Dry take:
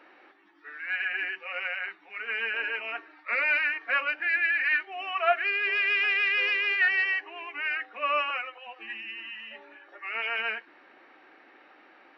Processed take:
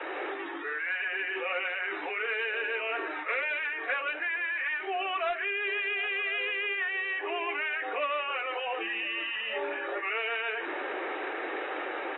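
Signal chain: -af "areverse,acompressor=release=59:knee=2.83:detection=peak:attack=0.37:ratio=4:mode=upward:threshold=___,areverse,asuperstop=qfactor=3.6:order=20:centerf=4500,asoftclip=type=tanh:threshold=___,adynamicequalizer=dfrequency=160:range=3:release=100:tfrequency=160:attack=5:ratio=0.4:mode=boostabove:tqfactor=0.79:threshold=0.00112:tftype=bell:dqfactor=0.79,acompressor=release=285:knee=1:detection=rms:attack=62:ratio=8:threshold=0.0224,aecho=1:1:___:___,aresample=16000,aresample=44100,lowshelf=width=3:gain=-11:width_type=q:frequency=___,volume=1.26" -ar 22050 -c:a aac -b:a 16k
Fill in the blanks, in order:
0.0398, 0.0708, 1051, 0.0944, 300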